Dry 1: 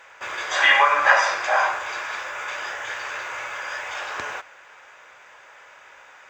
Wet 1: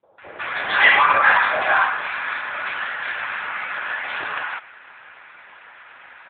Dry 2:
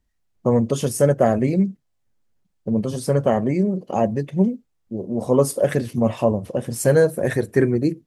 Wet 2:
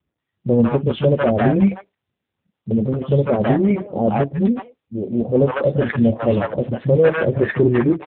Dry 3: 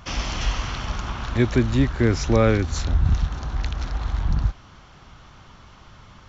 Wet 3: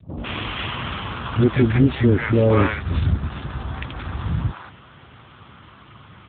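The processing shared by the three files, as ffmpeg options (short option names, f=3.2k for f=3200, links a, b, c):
-filter_complex "[0:a]volume=13.5dB,asoftclip=hard,volume=-13.5dB,acrossover=split=190|670[a][b][c];[b]adelay=30[d];[c]adelay=180[e];[a][d][e]amix=inputs=3:normalize=0,volume=6.5dB" -ar 8000 -c:a libopencore_amrnb -b:a 7950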